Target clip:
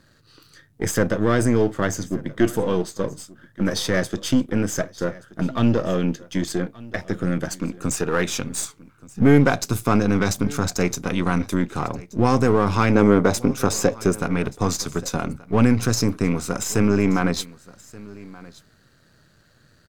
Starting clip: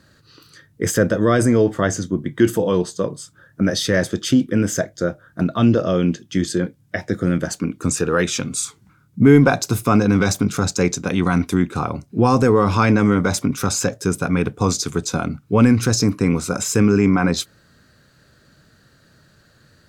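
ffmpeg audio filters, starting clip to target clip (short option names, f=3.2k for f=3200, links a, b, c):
-filter_complex "[0:a]aeval=exprs='if(lt(val(0),0),0.447*val(0),val(0))':c=same,asettb=1/sr,asplit=3[a][b][c];[a]atrim=end=12.954[d];[b]atrim=start=12.95:end=14.13,asetpts=PTS-STARTPTS,afade=t=in:d=0.004:c=qsin,afade=t=out:st=1.176:d=0.004:c=qsin,equalizer=f=470:w=0.76:g=7.5[e];[c]atrim=start=14.126[f];[d][e]acrossfade=d=0.004:c1=hsin:c2=qsin[g];[g][f]acrossfade=d=0.004:c1=qsin:c2=hsin,aecho=1:1:1178:0.0891,volume=-1dB"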